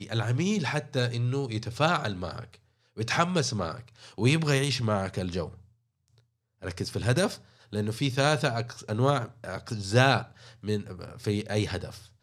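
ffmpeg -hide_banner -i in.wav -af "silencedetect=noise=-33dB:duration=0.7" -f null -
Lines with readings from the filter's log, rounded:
silence_start: 5.49
silence_end: 6.63 | silence_duration: 1.15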